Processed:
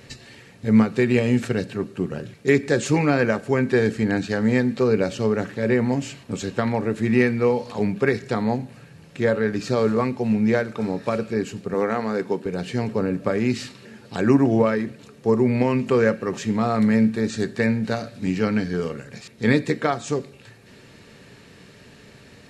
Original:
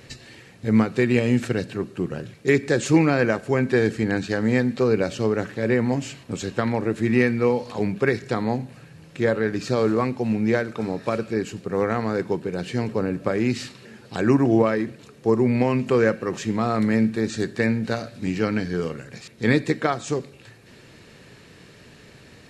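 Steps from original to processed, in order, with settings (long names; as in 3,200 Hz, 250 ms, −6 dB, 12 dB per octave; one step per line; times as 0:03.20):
0:11.74–0:12.46: high-pass filter 190 Hz 12 dB per octave
on a send: convolution reverb RT60 0.15 s, pre-delay 3 ms, DRR 12.5 dB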